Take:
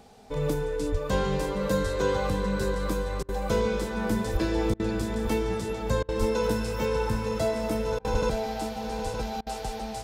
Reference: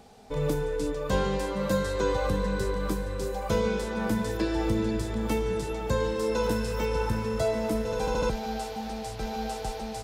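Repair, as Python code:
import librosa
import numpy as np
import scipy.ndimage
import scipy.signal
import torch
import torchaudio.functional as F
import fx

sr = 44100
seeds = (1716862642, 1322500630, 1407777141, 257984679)

y = fx.fix_declip(x, sr, threshold_db=-15.5)
y = fx.fix_deplosive(y, sr, at_s=(0.91, 4.32, 6.19, 8.12))
y = fx.fix_interpolate(y, sr, at_s=(3.23, 4.74, 6.03, 7.99, 9.41), length_ms=55.0)
y = fx.fix_echo_inverse(y, sr, delay_ms=915, level_db=-7.5)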